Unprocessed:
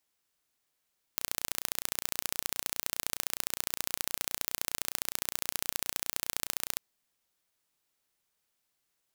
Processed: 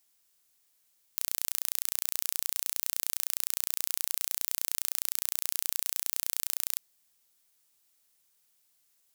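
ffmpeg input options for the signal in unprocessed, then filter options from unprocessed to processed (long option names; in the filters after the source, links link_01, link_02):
-f lavfi -i "aevalsrc='0.75*eq(mod(n,1485),0)*(0.5+0.5*eq(mod(n,2970),0))':duration=5.6:sample_rate=44100"
-af "highshelf=frequency=3900:gain=11.5,alimiter=limit=-2.5dB:level=0:latency=1:release=20"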